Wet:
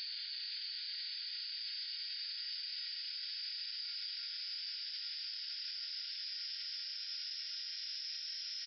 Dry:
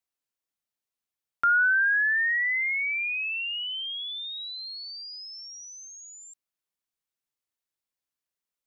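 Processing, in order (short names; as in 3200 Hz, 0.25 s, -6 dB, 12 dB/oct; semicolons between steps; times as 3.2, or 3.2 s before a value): bell 720 Hz +10.5 dB 1.3 oct; doubler 27 ms -7 dB; echo with dull and thin repeats by turns 0.172 s, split 2300 Hz, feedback 80%, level -12 dB; reverb RT60 0.60 s, pre-delay 0.121 s, DRR -5.5 dB; spectral noise reduction 20 dB; Paulstretch 24×, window 0.50 s, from 5.09; limiter -30.5 dBFS, peak gain reduction 11.5 dB; attack slew limiter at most 120 dB/s; gain -4 dB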